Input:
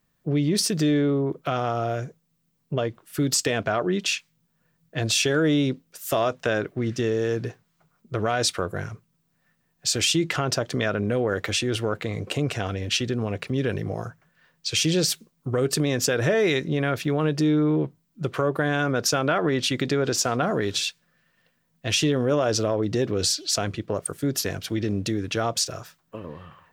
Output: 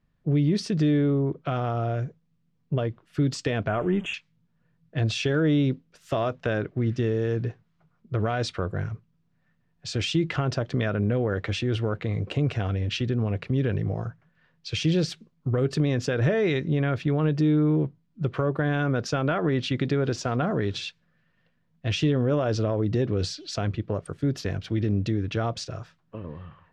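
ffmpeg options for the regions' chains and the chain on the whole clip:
-filter_complex "[0:a]asettb=1/sr,asplit=3[a][b][c];[a]atrim=end=3.684[d];[b]atrim=start=3.68:end=4.14,asetpts=PTS-STARTPTS,afade=t=in:d=0.004:c=qsin,afade=t=out:st=0.456:d=0.004:c=qsin,aeval=exprs='val(0)+0.5*0.015*sgn(val(0))':c=same,asuperstop=centerf=4700:order=8:qfactor=1.4[e];[c]atrim=start=4.136[f];[d][e]acrossfade=d=0.004:c1=hsin:c2=qsin[g];[g][f]acrossfade=d=0.004:c1=qsin:c2=hsin,lowpass=3.8k,lowshelf=f=180:g=12,volume=-4.5dB"

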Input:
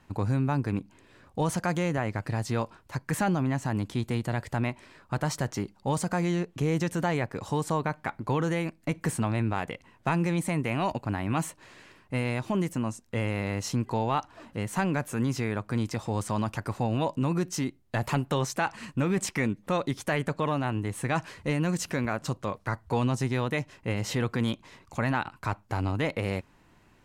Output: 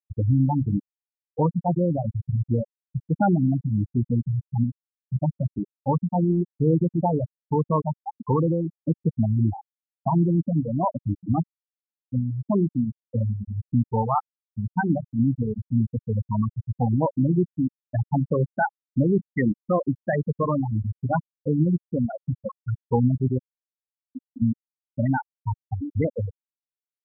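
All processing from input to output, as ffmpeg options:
-filter_complex "[0:a]asettb=1/sr,asplit=3[a][b][c];[a]atrim=end=23.384[d];[b]atrim=start=23.38:end=24.42,asetpts=PTS-STARTPTS,afade=t=in:d=0.004:c=qsin,afade=t=out:st=1.036:d=0.004:c=qsin,aecho=1:1:3.5:0.63,atrim=end_sample=45864,acompressor=threshold=-31dB:ratio=12:attack=3.2:release=140:knee=1:detection=peak[e];[c]atrim=start=24.416[f];[d][e]acrossfade=d=0.004:c1=hsin:c2=qsin[g];[g][f]acrossfade=d=0.004:c1=qsin:c2=hsin,bandreject=f=47.58:t=h:w=4,bandreject=f=95.16:t=h:w=4,bandreject=f=142.74:t=h:w=4,bandreject=f=190.32:t=h:w=4,afftfilt=real='re*gte(hypot(re,im),0.2)':imag='im*gte(hypot(re,im),0.2)':win_size=1024:overlap=0.75,volume=7.5dB"

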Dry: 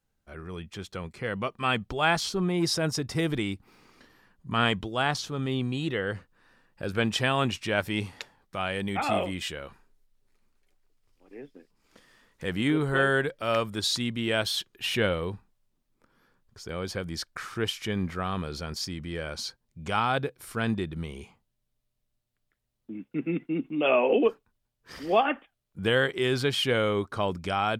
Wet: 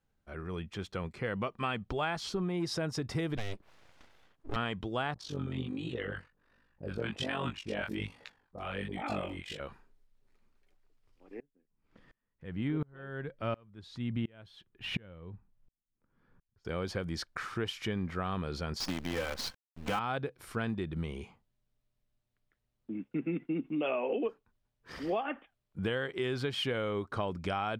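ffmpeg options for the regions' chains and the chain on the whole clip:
-filter_complex "[0:a]asettb=1/sr,asplit=3[a][b][c];[a]atrim=end=3.374[d];[b]atrim=start=3.37:end=4.56,asetpts=PTS-STARTPTS,afade=t=in:d=0.004:c=qsin,afade=t=out:st=1.186:d=0.004:c=qsin,highpass=89,aeval=exprs='abs(val(0))':c=same[e];[c]atrim=start=4.556[f];[d][e]acrossfade=d=0.004:c1=hsin:c2=qsin[g];[g][f]acrossfade=d=0.004:c1=qsin:c2=hsin,asettb=1/sr,asplit=3[h][i][j];[h]atrim=end=5.144[k];[i]atrim=start=5.14:end=9.6,asetpts=PTS-STARTPTS,afade=t=in:d=0.004:c=qsin,afade=t=out:st=4.456:d=0.004:c=qsin,tremolo=f=48:d=0.788,acrossover=split=830[l][m];[m]adelay=50[n];[l][n]amix=inputs=2:normalize=0,atrim=end_sample=196686,flanger=delay=16.5:depth=7.6:speed=1.3[o];[j]atrim=start=9.596[p];[k][o]acrossfade=d=0.004:c1=hsin:c2=qsin[q];[q][p]acrossfade=d=0.004:c1=qsin:c2=hsin,asettb=1/sr,asplit=3[r][s][t];[r]atrim=end=11.404[u];[s]atrim=start=11.4:end=16.65,asetpts=PTS-STARTPTS,afade=t=in:d=0.004:c=qsin,afade=t=out:st=5.246:d=0.004:c=qsin,bass=f=250:g=9,treble=f=4k:g=-10,aeval=exprs='val(0)*pow(10,-33*if(lt(mod(-1.4*n/s,1),2*abs(-1.4)/1000),1-mod(-1.4*n/s,1)/(2*abs(-1.4)/1000),(mod(-1.4*n/s,1)-2*abs(-1.4)/1000)/(1-2*abs(-1.4)/1000))/20)':c=same[v];[t]atrim=start=16.646[w];[u][v]acrossfade=d=0.004:c1=hsin:c2=qsin[x];[x][w]acrossfade=d=0.004:c1=qsin:c2=hsin,asettb=1/sr,asplit=3[y][z][aa];[y]atrim=end=18.804[ab];[z]atrim=start=18.8:end=19.99,asetpts=PTS-STARTPTS,afade=t=in:d=0.004:c=qsin,afade=t=out:st=1.186:d=0.004:c=qsin,lowpass=7.1k,aecho=1:1:3.9:0.97,atrim=end_sample=52479,acrusher=bits=6:dc=4:mix=0:aa=0.000001[ac];[aa]atrim=start=19.986[ad];[ab][ac]acrossfade=d=0.004:c1=hsin:c2=qsin[ae];[ae][ad]acrossfade=d=0.004:c1=qsin:c2=hsin,highshelf=f=5.3k:g=-11,acompressor=threshold=-30dB:ratio=6"

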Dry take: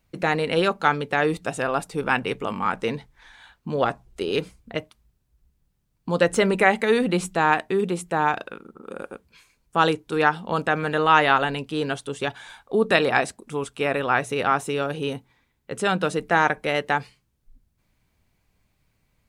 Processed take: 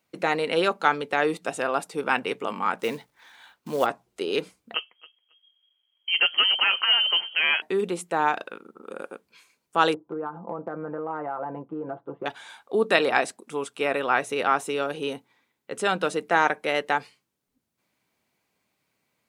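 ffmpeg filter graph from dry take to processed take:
-filter_complex "[0:a]asettb=1/sr,asplit=3[a][b][c];[a]atrim=end=2.794[d];[b]atrim=start=2.79:end=3.86,asetpts=PTS-STARTPTS,afade=t=in:d=0.004:c=qsin,afade=t=out:st=1.066:d=0.004:c=qsin,lowshelf=f=63:g=7,acrusher=bits=5:mode=log:mix=0:aa=0.000001[e];[c]atrim=start=3.856[f];[d][e]acrossfade=d=0.004:c1=hsin:c2=qsin[g];[g][f]acrossfade=d=0.004:c1=qsin:c2=hsin,asettb=1/sr,asplit=3[h][i][j];[h]atrim=end=4.744[k];[i]atrim=start=4.74:end=7.62,asetpts=PTS-STARTPTS,afade=t=in:d=0.004:c=qsin,afade=t=out:st=2.876:d=0.004:c=qsin,aecho=1:1:273|546:0.0841|0.0143,atrim=end_sample=127008,aeval=exprs='0.251*(abs(mod(val(0)/0.251+3,4)-2)-1)':c=same,lowpass=f=2.8k:t=q:w=0.5098,lowpass=f=2.8k:t=q:w=0.6013,lowpass=f=2.8k:t=q:w=0.9,lowpass=f=2.8k:t=q:w=2.563,afreqshift=-3300[l];[j]atrim=start=7.616[m];[k][l]acrossfade=d=0.004:c1=hsin:c2=qsin[n];[n][m]acrossfade=d=0.004:c1=qsin:c2=hsin,asettb=1/sr,asplit=3[o][p][q];[o]atrim=end=9.944[r];[p]atrim=start=9.94:end=12.26,asetpts=PTS-STARTPTS,afade=t=in:d=0.004:c=qsin,afade=t=out:st=2.316:d=0.004:c=qsin,lowpass=f=1.1k:w=0.5412,lowpass=f=1.1k:w=1.3066,aecho=1:1:5.9:0.61,atrim=end_sample=102312,acompressor=threshold=-25dB:ratio=12:attack=3.2:release=140:knee=1:detection=peak[s];[q]atrim=start=12.256[t];[r][s]acrossfade=d=0.004:c1=hsin:c2=qsin[u];[u][t]acrossfade=d=0.004:c1=qsin:c2=hsin,highpass=260,bandreject=f=1.7k:w=29,volume=-1dB"

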